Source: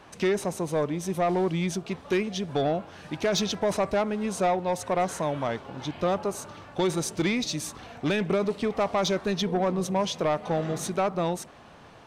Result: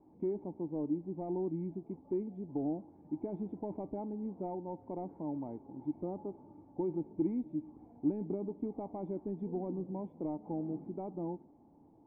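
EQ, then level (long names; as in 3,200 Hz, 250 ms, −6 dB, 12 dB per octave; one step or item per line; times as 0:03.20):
formant resonators in series u
high-frequency loss of the air 330 metres
0.0 dB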